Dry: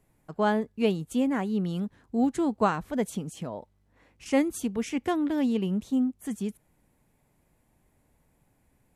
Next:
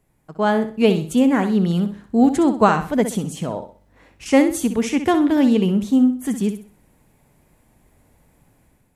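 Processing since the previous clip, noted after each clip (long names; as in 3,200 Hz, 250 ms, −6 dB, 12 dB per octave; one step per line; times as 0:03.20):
automatic gain control gain up to 8.5 dB
on a send: flutter between parallel walls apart 10.9 metres, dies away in 0.39 s
on the sum: level +1.5 dB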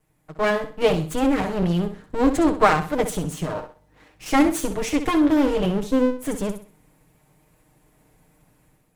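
lower of the sound and its delayed copy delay 6.5 ms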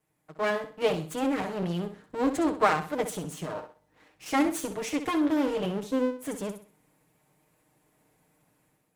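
high-pass filter 200 Hz 6 dB per octave
level −6 dB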